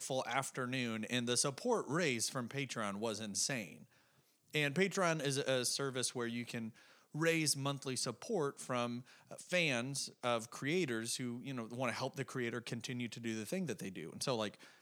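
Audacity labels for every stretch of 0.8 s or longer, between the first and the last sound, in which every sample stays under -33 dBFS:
3.620000	4.550000	silence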